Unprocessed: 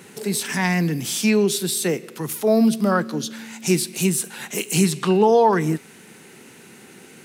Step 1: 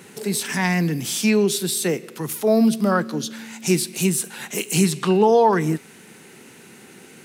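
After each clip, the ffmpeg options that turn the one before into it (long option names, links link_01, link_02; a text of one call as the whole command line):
ffmpeg -i in.wav -af anull out.wav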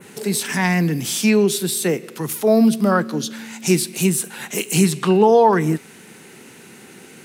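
ffmpeg -i in.wav -af "adynamicequalizer=threshold=0.0126:dfrequency=5100:dqfactor=0.93:tfrequency=5100:tqfactor=0.93:attack=5:release=100:ratio=0.375:range=2:mode=cutabove:tftype=bell,volume=2.5dB" out.wav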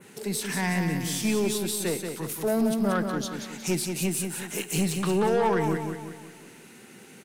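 ffmpeg -i in.wav -af "aeval=exprs='(tanh(3.98*val(0)+0.15)-tanh(0.15))/3.98':channel_layout=same,aecho=1:1:182|364|546|728|910|1092:0.501|0.231|0.106|0.0488|0.0224|0.0103,volume=-7.5dB" out.wav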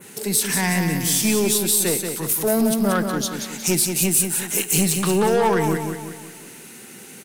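ffmpeg -i in.wav -af "crystalizer=i=1.5:c=0,volume=5dB" out.wav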